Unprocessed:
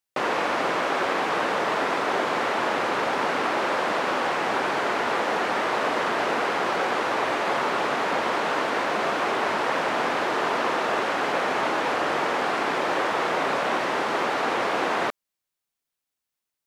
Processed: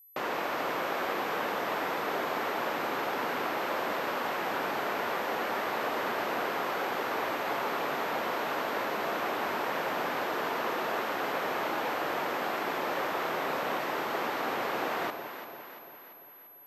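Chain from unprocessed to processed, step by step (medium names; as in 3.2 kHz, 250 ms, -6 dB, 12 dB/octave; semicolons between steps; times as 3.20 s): whistle 12 kHz -46 dBFS; echo whose repeats swap between lows and highs 171 ms, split 850 Hz, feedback 73%, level -7 dB; trim -8 dB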